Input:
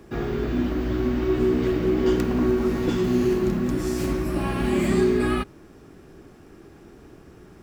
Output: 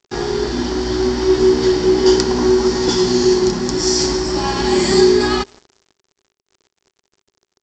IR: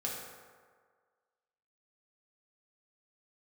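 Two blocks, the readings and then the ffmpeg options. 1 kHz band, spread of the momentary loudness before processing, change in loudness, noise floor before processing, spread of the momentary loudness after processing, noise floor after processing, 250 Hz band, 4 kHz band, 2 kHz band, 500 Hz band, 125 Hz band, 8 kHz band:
+10.0 dB, 5 LU, +8.0 dB, −49 dBFS, 7 LU, −84 dBFS, +5.5 dB, +19.0 dB, +7.5 dB, +9.5 dB, +1.0 dB, +18.5 dB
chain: -filter_complex "[0:a]superequalizer=9b=2.82:12b=0.447:14b=2.51,asplit=2[link_01][link_02];[link_02]asoftclip=type=tanh:threshold=-27dB,volume=-8dB[link_03];[link_01][link_03]amix=inputs=2:normalize=0,aecho=1:1:170|340|510|680|850:0.0891|0.0517|0.03|0.0174|0.0101,crystalizer=i=8:c=0,aresample=16000,aeval=exprs='sgn(val(0))*max(abs(val(0))-0.0237,0)':channel_layout=same,aresample=44100,equalizer=frequency=390:width_type=o:width=0.36:gain=9.5,volume=1dB"

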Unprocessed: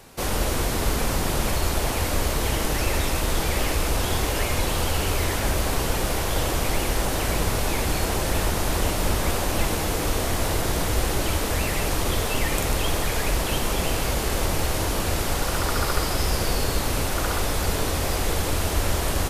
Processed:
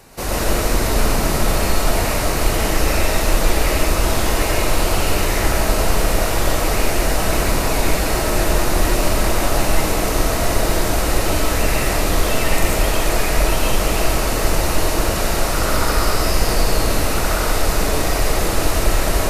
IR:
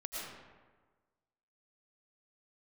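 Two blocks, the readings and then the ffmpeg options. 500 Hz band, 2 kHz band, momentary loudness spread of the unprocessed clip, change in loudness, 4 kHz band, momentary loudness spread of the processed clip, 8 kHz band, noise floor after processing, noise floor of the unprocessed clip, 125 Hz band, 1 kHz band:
+7.0 dB, +6.0 dB, 1 LU, +5.5 dB, +4.5 dB, 1 LU, +5.0 dB, −20 dBFS, −26 dBFS, +4.0 dB, +6.5 dB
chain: -filter_complex "[0:a]equalizer=frequency=3300:width=7.5:gain=-6.5[link_01];[1:a]atrim=start_sample=2205,afade=type=out:start_time=0.25:duration=0.01,atrim=end_sample=11466[link_02];[link_01][link_02]afir=irnorm=-1:irlink=0,volume=6.5dB"

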